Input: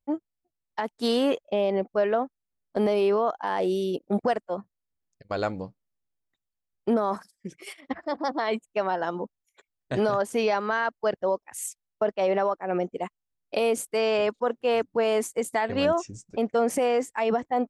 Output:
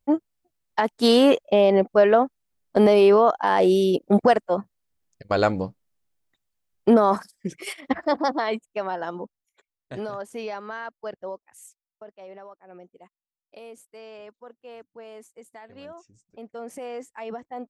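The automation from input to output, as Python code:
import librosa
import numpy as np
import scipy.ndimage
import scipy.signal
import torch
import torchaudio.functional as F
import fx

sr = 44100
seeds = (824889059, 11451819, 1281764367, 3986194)

y = fx.gain(x, sr, db=fx.line((8.11, 7.5), (8.67, -2.0), (9.24, -2.0), (10.08, -8.5), (11.27, -8.5), (12.06, -19.0), (15.96, -19.0), (17.04, -10.0)))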